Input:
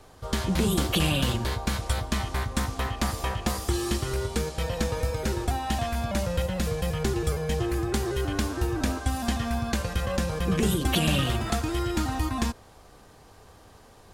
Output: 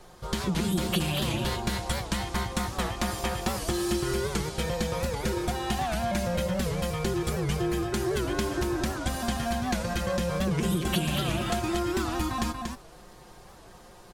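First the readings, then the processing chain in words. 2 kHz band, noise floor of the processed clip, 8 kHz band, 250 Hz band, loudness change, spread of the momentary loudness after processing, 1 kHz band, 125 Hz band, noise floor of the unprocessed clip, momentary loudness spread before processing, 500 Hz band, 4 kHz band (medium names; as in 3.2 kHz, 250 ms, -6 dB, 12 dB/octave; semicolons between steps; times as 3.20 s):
-0.5 dB, -50 dBFS, -1.0 dB, -0.5 dB, -1.5 dB, 4 LU, 0.0 dB, -3.0 dB, -52 dBFS, 5 LU, 0.0 dB, -1.5 dB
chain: comb 5.6 ms; compression, threshold -25 dBFS, peak gain reduction 8.5 dB; on a send: delay 235 ms -5 dB; on the sum: warped record 78 rpm, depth 160 cents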